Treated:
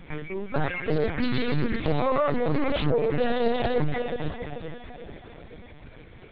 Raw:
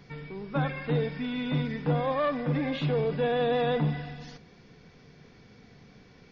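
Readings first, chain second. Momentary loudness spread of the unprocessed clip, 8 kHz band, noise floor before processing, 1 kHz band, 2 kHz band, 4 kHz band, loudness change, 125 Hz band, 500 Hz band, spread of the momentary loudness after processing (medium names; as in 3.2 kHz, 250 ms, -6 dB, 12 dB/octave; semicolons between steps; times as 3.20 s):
13 LU, no reading, -55 dBFS, +3.0 dB, +4.0 dB, +3.0 dB, +2.0 dB, -0.5 dB, +3.0 dB, 19 LU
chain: peak limiter -24 dBFS, peak gain reduction 7.5 dB; echo that smears into a reverb 492 ms, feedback 43%, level -6.5 dB; reverb removal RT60 0.65 s; LPC vocoder at 8 kHz pitch kept; loudspeaker Doppler distortion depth 0.44 ms; trim +8.5 dB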